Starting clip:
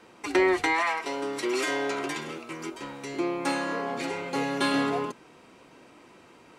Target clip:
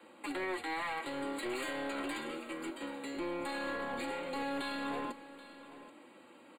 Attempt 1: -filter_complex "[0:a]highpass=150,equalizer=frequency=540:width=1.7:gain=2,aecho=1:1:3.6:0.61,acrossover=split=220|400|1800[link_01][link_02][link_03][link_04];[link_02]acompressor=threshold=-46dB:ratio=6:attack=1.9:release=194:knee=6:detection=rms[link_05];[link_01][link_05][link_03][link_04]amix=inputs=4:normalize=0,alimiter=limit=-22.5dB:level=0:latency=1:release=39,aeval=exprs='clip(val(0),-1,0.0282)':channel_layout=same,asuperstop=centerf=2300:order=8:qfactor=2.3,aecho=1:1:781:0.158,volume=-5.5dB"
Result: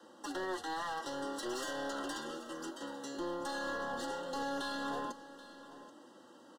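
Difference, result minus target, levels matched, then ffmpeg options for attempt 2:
downward compressor: peak gain reduction +10 dB; 8,000 Hz band +5.5 dB
-filter_complex "[0:a]highpass=150,equalizer=frequency=540:width=1.7:gain=2,aecho=1:1:3.6:0.61,acrossover=split=220|400|1800[link_01][link_02][link_03][link_04];[link_02]acompressor=threshold=-34dB:ratio=6:attack=1.9:release=194:knee=6:detection=rms[link_05];[link_01][link_05][link_03][link_04]amix=inputs=4:normalize=0,alimiter=limit=-22.5dB:level=0:latency=1:release=39,aeval=exprs='clip(val(0),-1,0.0282)':channel_layout=same,asuperstop=centerf=5700:order=8:qfactor=2.3,aecho=1:1:781:0.158,volume=-5.5dB"

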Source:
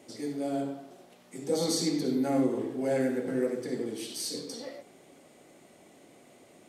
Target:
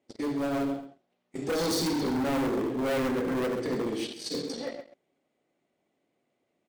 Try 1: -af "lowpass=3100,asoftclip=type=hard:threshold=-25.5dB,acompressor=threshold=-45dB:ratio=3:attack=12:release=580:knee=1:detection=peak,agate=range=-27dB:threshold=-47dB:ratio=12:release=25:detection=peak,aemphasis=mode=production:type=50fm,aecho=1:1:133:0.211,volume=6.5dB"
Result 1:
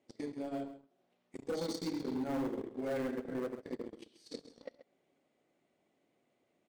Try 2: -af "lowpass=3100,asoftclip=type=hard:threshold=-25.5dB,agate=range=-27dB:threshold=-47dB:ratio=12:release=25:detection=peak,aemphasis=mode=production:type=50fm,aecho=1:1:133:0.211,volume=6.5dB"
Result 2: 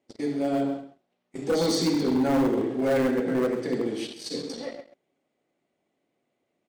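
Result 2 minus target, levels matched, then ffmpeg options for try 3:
hard clipping: distortion −7 dB
-af "lowpass=3100,asoftclip=type=hard:threshold=-32.5dB,agate=range=-27dB:threshold=-47dB:ratio=12:release=25:detection=peak,aemphasis=mode=production:type=50fm,aecho=1:1:133:0.211,volume=6.5dB"

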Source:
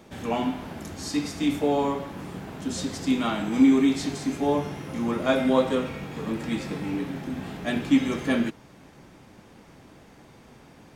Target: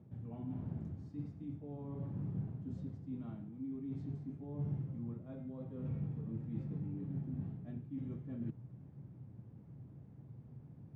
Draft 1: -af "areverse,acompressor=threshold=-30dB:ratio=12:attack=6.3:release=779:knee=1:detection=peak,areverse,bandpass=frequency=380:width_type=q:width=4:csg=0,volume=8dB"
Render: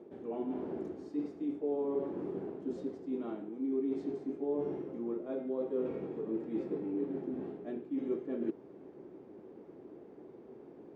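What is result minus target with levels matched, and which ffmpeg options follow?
125 Hz band −19.5 dB
-af "areverse,acompressor=threshold=-30dB:ratio=12:attack=6.3:release=779:knee=1:detection=peak,areverse,bandpass=frequency=120:width_type=q:width=4:csg=0,volume=8dB"

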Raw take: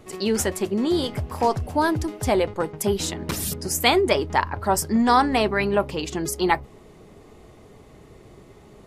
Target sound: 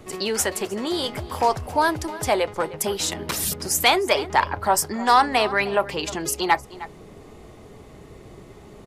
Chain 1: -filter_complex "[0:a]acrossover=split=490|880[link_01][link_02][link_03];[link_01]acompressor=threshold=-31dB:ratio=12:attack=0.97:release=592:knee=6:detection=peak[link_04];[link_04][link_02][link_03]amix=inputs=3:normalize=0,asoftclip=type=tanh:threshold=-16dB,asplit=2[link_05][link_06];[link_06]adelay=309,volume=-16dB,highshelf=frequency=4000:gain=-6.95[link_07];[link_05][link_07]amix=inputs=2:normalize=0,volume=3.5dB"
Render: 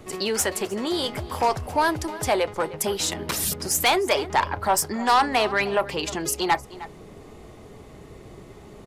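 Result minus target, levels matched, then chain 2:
soft clipping: distortion +9 dB
-filter_complex "[0:a]acrossover=split=490|880[link_01][link_02][link_03];[link_01]acompressor=threshold=-31dB:ratio=12:attack=0.97:release=592:knee=6:detection=peak[link_04];[link_04][link_02][link_03]amix=inputs=3:normalize=0,asoftclip=type=tanh:threshold=-8.5dB,asplit=2[link_05][link_06];[link_06]adelay=309,volume=-16dB,highshelf=frequency=4000:gain=-6.95[link_07];[link_05][link_07]amix=inputs=2:normalize=0,volume=3.5dB"

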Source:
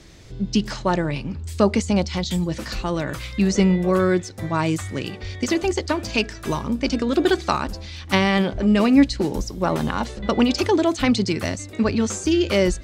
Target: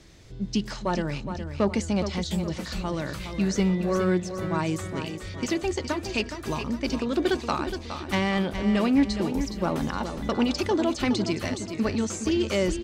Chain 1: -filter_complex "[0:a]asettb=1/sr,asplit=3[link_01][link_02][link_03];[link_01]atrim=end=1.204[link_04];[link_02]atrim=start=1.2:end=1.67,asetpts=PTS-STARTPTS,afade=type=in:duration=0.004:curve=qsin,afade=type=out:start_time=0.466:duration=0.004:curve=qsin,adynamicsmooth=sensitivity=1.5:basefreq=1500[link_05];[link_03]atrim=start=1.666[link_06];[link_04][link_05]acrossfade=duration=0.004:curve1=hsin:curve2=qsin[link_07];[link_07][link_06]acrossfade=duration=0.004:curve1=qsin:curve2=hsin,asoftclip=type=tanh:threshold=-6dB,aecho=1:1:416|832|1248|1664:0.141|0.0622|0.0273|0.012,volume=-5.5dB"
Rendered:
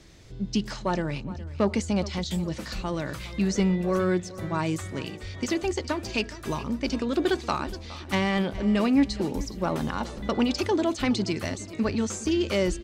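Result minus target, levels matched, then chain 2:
echo-to-direct −8 dB
-filter_complex "[0:a]asettb=1/sr,asplit=3[link_01][link_02][link_03];[link_01]atrim=end=1.204[link_04];[link_02]atrim=start=1.2:end=1.67,asetpts=PTS-STARTPTS,afade=type=in:duration=0.004:curve=qsin,afade=type=out:start_time=0.466:duration=0.004:curve=qsin,adynamicsmooth=sensitivity=1.5:basefreq=1500[link_05];[link_03]atrim=start=1.666[link_06];[link_04][link_05]acrossfade=duration=0.004:curve1=hsin:curve2=qsin[link_07];[link_07][link_06]acrossfade=duration=0.004:curve1=qsin:curve2=hsin,asoftclip=type=tanh:threshold=-6dB,aecho=1:1:416|832|1248|1664|2080:0.355|0.156|0.0687|0.0302|0.0133,volume=-5.5dB"

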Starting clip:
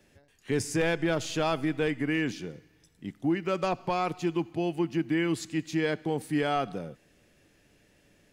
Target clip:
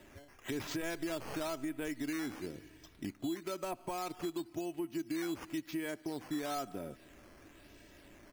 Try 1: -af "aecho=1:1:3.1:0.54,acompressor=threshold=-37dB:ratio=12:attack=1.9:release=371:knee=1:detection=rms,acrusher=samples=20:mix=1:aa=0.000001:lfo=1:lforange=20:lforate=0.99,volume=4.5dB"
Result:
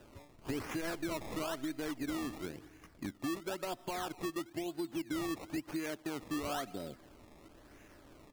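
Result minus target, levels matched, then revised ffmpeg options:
sample-and-hold swept by an LFO: distortion +6 dB
-af "aecho=1:1:3.1:0.54,acompressor=threshold=-37dB:ratio=12:attack=1.9:release=371:knee=1:detection=rms,acrusher=samples=8:mix=1:aa=0.000001:lfo=1:lforange=8:lforate=0.99,volume=4.5dB"

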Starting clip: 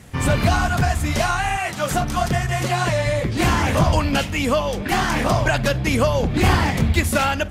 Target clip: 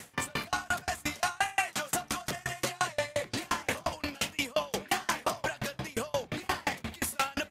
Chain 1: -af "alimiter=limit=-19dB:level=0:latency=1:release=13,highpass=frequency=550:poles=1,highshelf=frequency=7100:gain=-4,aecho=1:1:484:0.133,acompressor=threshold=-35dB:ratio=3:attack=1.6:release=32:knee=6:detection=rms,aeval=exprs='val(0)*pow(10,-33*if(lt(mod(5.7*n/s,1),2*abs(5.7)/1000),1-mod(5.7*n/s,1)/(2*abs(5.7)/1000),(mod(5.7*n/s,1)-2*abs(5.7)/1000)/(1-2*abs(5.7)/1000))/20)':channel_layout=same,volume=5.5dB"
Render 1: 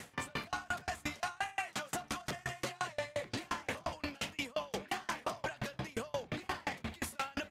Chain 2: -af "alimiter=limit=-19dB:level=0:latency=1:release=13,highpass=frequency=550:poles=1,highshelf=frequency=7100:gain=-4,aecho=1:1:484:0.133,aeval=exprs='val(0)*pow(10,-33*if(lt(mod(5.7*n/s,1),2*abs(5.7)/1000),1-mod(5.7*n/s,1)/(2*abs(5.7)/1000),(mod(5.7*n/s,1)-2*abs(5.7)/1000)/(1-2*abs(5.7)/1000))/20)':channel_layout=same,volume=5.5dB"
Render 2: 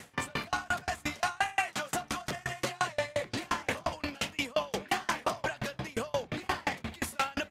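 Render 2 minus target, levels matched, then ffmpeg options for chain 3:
8,000 Hz band −4.0 dB
-af "alimiter=limit=-19dB:level=0:latency=1:release=13,highpass=frequency=550:poles=1,highshelf=frequency=7100:gain=5.5,aecho=1:1:484:0.133,aeval=exprs='val(0)*pow(10,-33*if(lt(mod(5.7*n/s,1),2*abs(5.7)/1000),1-mod(5.7*n/s,1)/(2*abs(5.7)/1000),(mod(5.7*n/s,1)-2*abs(5.7)/1000)/(1-2*abs(5.7)/1000))/20)':channel_layout=same,volume=5.5dB"

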